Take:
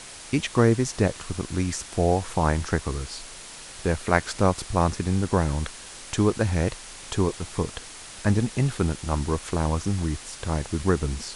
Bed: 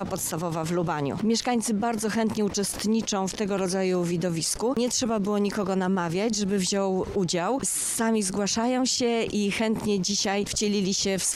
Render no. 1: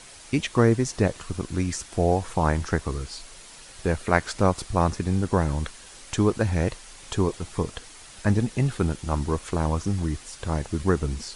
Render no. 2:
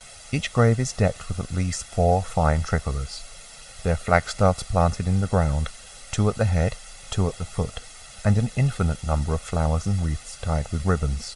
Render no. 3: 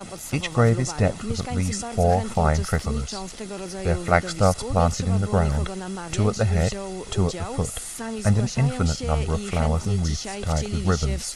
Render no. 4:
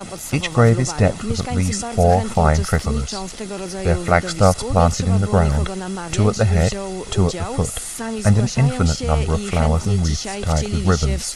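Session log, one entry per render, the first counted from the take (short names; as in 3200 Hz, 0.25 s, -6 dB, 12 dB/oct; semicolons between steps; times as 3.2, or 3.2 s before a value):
denoiser 6 dB, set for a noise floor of -42 dBFS
gate with hold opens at -38 dBFS; comb 1.5 ms, depth 70%
add bed -7.5 dB
gain +5 dB; limiter -1 dBFS, peak gain reduction 2.5 dB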